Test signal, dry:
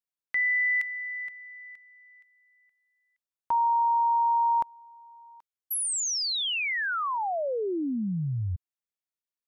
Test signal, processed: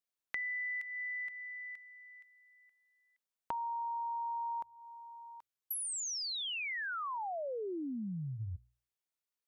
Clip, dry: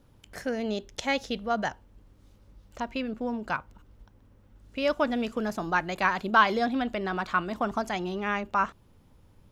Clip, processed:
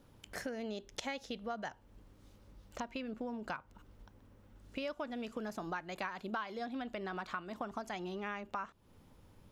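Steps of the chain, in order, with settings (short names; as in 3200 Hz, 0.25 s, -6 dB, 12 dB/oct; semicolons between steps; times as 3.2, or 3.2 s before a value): low shelf 130 Hz -5 dB; notches 60/120 Hz; compressor 6:1, threshold -38 dBFS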